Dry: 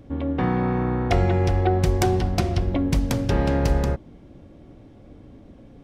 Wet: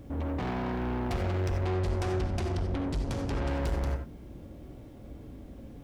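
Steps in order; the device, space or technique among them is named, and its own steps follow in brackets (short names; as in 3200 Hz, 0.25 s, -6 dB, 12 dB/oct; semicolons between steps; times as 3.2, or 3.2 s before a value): open-reel tape (soft clip -29.5 dBFS, distortion -6 dB; bell 61 Hz +5 dB 0.92 oct; white noise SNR 42 dB); 1.66–3.48 LPF 9600 Hz 12 dB/oct; non-linear reverb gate 0.11 s rising, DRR 7 dB; gain -1.5 dB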